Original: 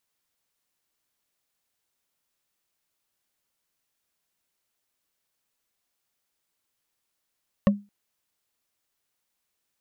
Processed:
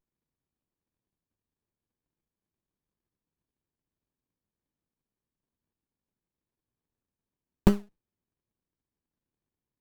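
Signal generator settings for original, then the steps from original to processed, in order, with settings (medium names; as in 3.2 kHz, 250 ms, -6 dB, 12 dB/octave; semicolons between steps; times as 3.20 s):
wood hit, length 0.22 s, lowest mode 203 Hz, decay 0.26 s, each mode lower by 4.5 dB, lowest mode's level -12 dB
gate -51 dBFS, range -8 dB; in parallel at -5.5 dB: decimation with a swept rate 41×, swing 60% 3.6 Hz; on the sum: sliding maximum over 65 samples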